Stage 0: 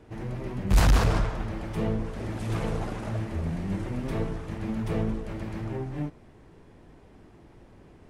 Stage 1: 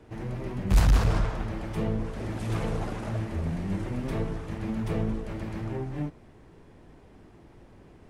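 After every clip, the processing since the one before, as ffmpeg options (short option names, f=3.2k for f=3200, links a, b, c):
-filter_complex "[0:a]acrossover=split=190[a][b];[b]acompressor=threshold=-28dB:ratio=6[c];[a][c]amix=inputs=2:normalize=0"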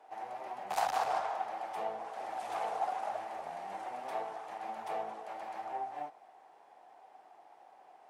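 -af "highpass=f=760:t=q:w=8.3,volume=-7dB"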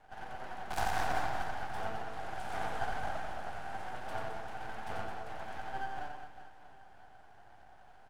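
-af "aeval=exprs='max(val(0),0)':c=same,aecho=1:1:90|216|392.4|639.4|985.1:0.631|0.398|0.251|0.158|0.1,volume=1dB"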